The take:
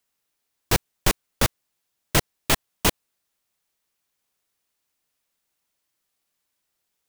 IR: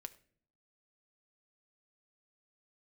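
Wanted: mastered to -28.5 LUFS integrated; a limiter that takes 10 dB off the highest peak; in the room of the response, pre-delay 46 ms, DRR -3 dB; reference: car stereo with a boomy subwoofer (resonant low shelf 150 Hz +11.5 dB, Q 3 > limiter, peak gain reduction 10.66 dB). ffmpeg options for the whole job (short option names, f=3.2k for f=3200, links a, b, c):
-filter_complex "[0:a]alimiter=limit=-14dB:level=0:latency=1,asplit=2[a][b];[1:a]atrim=start_sample=2205,adelay=46[c];[b][c]afir=irnorm=-1:irlink=0,volume=8dB[d];[a][d]amix=inputs=2:normalize=0,lowshelf=f=150:t=q:w=3:g=11.5,volume=-1.5dB,alimiter=limit=-13dB:level=0:latency=1"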